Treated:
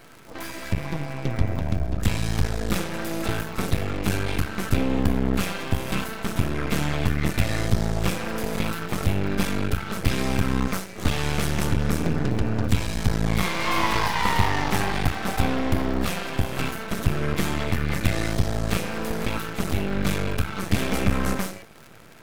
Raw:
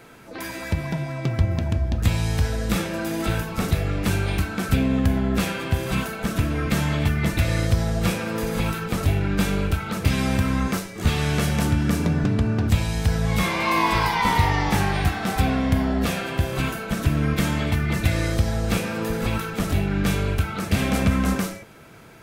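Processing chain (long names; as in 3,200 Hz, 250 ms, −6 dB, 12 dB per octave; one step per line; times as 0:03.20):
half-wave rectification
surface crackle 62 per second −36 dBFS
level +2 dB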